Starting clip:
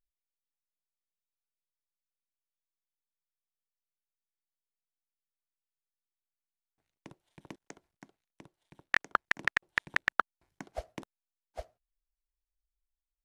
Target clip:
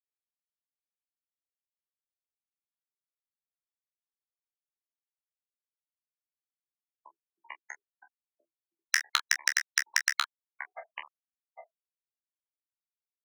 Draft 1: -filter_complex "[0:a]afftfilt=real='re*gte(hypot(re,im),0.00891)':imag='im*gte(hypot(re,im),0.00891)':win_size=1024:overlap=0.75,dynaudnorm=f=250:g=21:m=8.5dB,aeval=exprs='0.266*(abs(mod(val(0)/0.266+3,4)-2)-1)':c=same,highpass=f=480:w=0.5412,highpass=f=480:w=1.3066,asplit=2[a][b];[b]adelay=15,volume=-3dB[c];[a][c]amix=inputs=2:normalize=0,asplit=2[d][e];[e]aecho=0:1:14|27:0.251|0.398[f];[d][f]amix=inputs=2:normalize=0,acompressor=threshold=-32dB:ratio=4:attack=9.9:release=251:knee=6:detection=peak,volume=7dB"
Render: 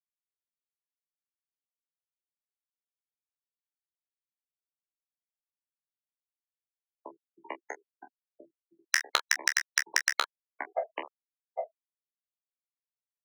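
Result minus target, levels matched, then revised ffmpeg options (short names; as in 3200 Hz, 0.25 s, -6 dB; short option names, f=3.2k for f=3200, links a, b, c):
500 Hz band +18.0 dB
-filter_complex "[0:a]afftfilt=real='re*gte(hypot(re,im),0.00891)':imag='im*gte(hypot(re,im),0.00891)':win_size=1024:overlap=0.75,dynaudnorm=f=250:g=21:m=8.5dB,aeval=exprs='0.266*(abs(mod(val(0)/0.266+3,4)-2)-1)':c=same,highpass=f=1.1k:w=0.5412,highpass=f=1.1k:w=1.3066,asplit=2[a][b];[b]adelay=15,volume=-3dB[c];[a][c]amix=inputs=2:normalize=0,asplit=2[d][e];[e]aecho=0:1:14|27:0.251|0.398[f];[d][f]amix=inputs=2:normalize=0,acompressor=threshold=-32dB:ratio=4:attack=9.9:release=251:knee=6:detection=peak,volume=7dB"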